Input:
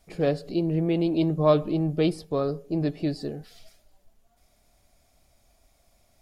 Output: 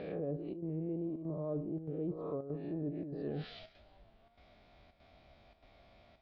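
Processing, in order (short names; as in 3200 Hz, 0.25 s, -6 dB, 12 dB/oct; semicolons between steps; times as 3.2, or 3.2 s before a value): spectral swells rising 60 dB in 0.82 s; HPF 79 Hz 6 dB/oct; treble ducked by the level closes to 500 Hz, closed at -20.5 dBFS; steep low-pass 4000 Hz 36 dB/oct; reverse; compressor 6:1, threshold -40 dBFS, peak gain reduction 20 dB; reverse; chopper 1.6 Hz, depth 60%, duty 85%; gain +3 dB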